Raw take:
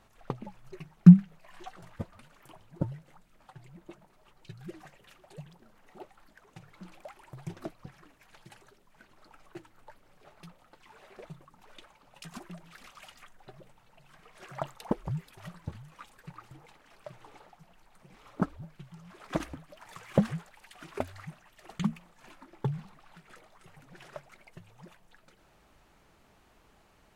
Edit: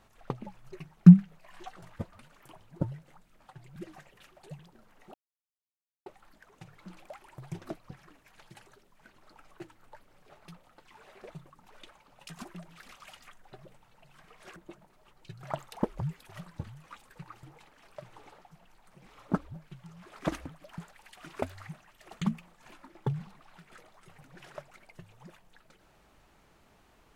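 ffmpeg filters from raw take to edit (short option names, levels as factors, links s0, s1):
-filter_complex "[0:a]asplit=6[s0][s1][s2][s3][s4][s5];[s0]atrim=end=3.762[s6];[s1]atrim=start=4.628:end=6.01,asetpts=PTS-STARTPTS,afade=t=out:st=1.378:d=0.004:c=hsin,apad=pad_dur=0.92[s7];[s2]atrim=start=6.01:end=14.512,asetpts=PTS-STARTPTS,afade=t=in:d=0.004:c=hsin[s8];[s3]atrim=start=3.758:end=4.632[s9];[s4]atrim=start=14.508:end=19.862[s10];[s5]atrim=start=20.358[s11];[s7][s8]concat=n=2:v=0:a=1[s12];[s6][s12]acrossfade=d=0.004:c1=hsin:c2=hsin[s13];[s13][s9]acrossfade=d=0.004:c1=hsin:c2=hsin[s14];[s14][s10]acrossfade=d=0.004:c1=hsin:c2=hsin[s15];[s15][s11]acrossfade=d=0.004:c1=hsin:c2=hsin"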